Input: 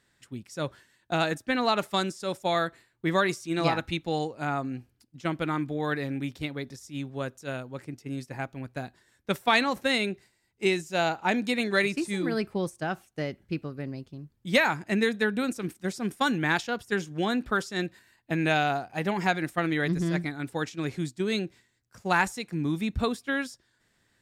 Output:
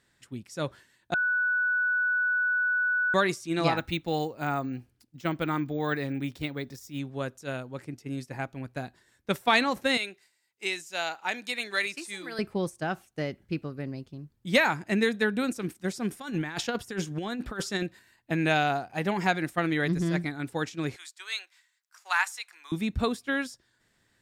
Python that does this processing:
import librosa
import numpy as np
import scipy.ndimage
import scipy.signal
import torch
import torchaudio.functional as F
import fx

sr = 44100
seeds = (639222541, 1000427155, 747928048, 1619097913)

y = fx.resample_bad(x, sr, factor=2, down='none', up='hold', at=(3.77, 6.99))
y = fx.highpass(y, sr, hz=1500.0, slope=6, at=(9.97, 12.39))
y = fx.over_compress(y, sr, threshold_db=-30.0, ratio=-0.5, at=(16.12, 17.83))
y = fx.highpass(y, sr, hz=1000.0, slope=24, at=(20.96, 22.72))
y = fx.edit(y, sr, fx.bleep(start_s=1.14, length_s=2.0, hz=1480.0, db=-23.0), tone=tone)